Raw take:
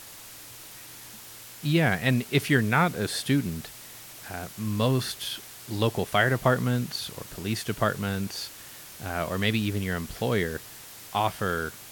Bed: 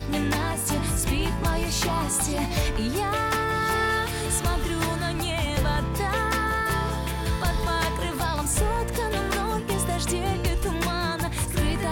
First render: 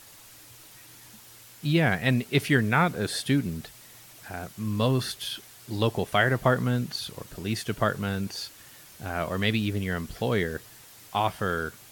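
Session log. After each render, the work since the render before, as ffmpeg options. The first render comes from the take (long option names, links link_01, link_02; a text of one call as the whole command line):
ffmpeg -i in.wav -af "afftdn=noise_reduction=6:noise_floor=-45" out.wav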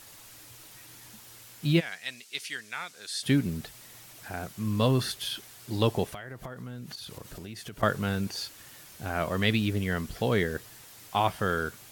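ffmpeg -i in.wav -filter_complex "[0:a]asplit=3[link_01][link_02][link_03];[link_01]afade=type=out:start_time=1.79:duration=0.02[link_04];[link_02]bandpass=frequency=6000:width_type=q:width=1,afade=type=in:start_time=1.79:duration=0.02,afade=type=out:start_time=3.22:duration=0.02[link_05];[link_03]afade=type=in:start_time=3.22:duration=0.02[link_06];[link_04][link_05][link_06]amix=inputs=3:normalize=0,asettb=1/sr,asplit=3[link_07][link_08][link_09];[link_07]atrim=end=6.084[link_10];[link_08]atrim=start=6.08:end=7.83,asetpts=PTS-STARTPTS,afade=type=in:duration=0.004:curve=qsin,afade=type=out:start_time=1.746:duration=0.004:curve=qsin,acompressor=threshold=-37dB:ratio=10:attack=3.2:release=140:knee=1:detection=peak[link_11];[link_09]atrim=start=7.826[link_12];[link_10][link_11]acrossfade=duration=0.004:curve1=hsin:curve2=qsin[link_13];[link_13][link_12]acrossfade=duration=0.004:curve1=qsin:curve2=hsin" out.wav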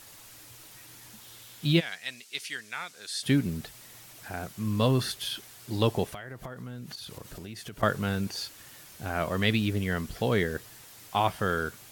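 ffmpeg -i in.wav -filter_complex "[0:a]asettb=1/sr,asplit=3[link_01][link_02][link_03];[link_01]atrim=end=1.214[link_04];[link_02]atrim=start=1.21:end=1.96,asetpts=PTS-STARTPTS,afade=type=in:duration=0.004:curve=qsin,afade=type=out:start_time=0.746:duration=0.004:curve=qsin,equalizer=frequency=3500:width_type=o:width=0.41:gain=7[link_05];[link_03]atrim=start=1.956[link_06];[link_04][link_05]acrossfade=duration=0.004:curve1=hsin:curve2=qsin[link_07];[link_07][link_06]acrossfade=duration=0.004:curve1=qsin:curve2=hsin" out.wav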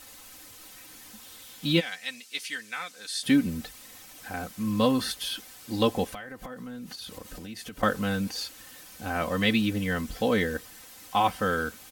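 ffmpeg -i in.wav -af "aecho=1:1:3.9:0.74" out.wav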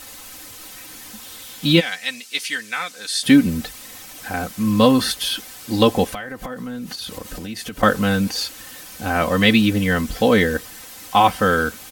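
ffmpeg -i in.wav -af "volume=9.5dB,alimiter=limit=-1dB:level=0:latency=1" out.wav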